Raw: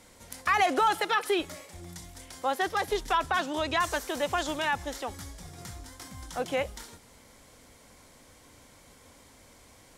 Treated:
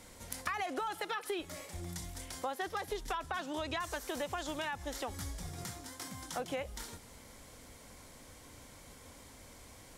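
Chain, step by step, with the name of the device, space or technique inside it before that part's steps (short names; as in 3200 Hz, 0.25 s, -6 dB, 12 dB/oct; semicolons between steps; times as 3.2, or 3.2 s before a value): 5.64–6.4 HPF 140 Hz 12 dB/oct; ASMR close-microphone chain (low shelf 130 Hz +4 dB; compressor 6:1, threshold -35 dBFS, peak gain reduction 14.5 dB; high shelf 11000 Hz +3.5 dB)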